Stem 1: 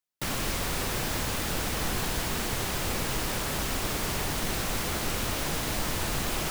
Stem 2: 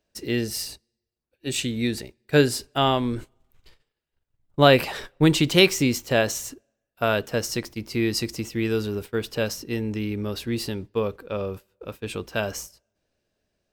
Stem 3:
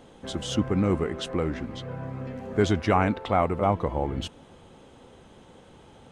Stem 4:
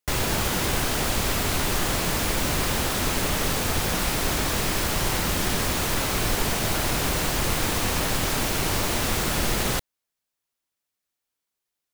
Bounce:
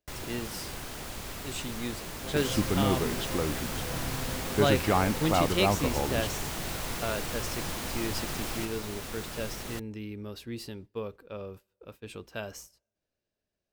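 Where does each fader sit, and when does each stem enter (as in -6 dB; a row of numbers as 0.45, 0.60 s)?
-6.5, -11.0, -3.5, -15.0 dB; 2.15, 0.00, 2.00, 0.00 s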